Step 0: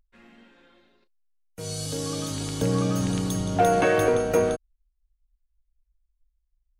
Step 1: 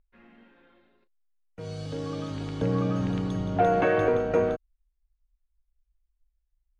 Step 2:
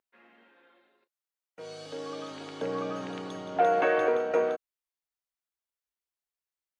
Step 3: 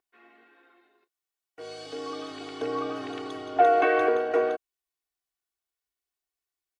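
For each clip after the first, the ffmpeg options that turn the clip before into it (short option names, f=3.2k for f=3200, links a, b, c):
-af "lowpass=2.5k,volume=-2dB"
-af "highpass=420"
-af "aecho=1:1:2.7:0.85"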